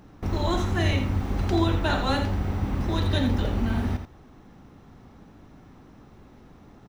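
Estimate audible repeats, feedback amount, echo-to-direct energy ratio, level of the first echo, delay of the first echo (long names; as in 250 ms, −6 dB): 1, repeats not evenly spaced, −8.5 dB, −8.5 dB, 84 ms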